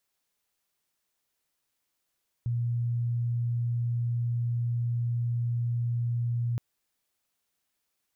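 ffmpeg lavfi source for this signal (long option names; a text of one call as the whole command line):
ffmpeg -f lavfi -i "sine=frequency=119:duration=4.12:sample_rate=44100,volume=-7.44dB" out.wav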